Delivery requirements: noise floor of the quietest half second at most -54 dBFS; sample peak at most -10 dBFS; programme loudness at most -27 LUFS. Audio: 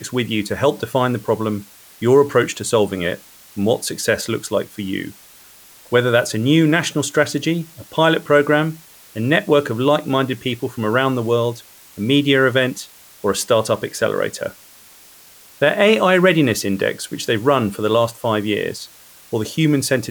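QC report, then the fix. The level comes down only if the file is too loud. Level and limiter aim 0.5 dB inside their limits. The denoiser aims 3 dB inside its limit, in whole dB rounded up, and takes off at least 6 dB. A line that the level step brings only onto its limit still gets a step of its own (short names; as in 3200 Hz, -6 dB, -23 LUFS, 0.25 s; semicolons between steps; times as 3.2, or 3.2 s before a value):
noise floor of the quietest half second -45 dBFS: fail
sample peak -3.0 dBFS: fail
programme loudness -18.0 LUFS: fail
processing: gain -9.5 dB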